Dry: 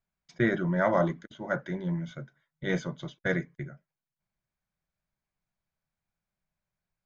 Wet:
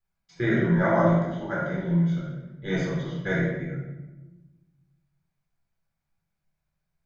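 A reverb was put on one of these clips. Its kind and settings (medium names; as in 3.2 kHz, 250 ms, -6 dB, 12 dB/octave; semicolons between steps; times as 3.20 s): simulated room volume 570 m³, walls mixed, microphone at 4 m; trim -6 dB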